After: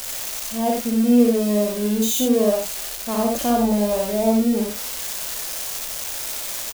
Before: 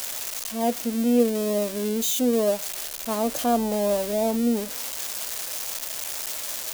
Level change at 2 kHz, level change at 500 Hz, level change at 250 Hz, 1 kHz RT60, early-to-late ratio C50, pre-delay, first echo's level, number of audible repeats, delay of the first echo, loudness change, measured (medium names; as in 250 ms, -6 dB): +3.0 dB, +3.0 dB, +6.0 dB, no reverb, no reverb, no reverb, -3.0 dB, 2, 58 ms, +4.0 dB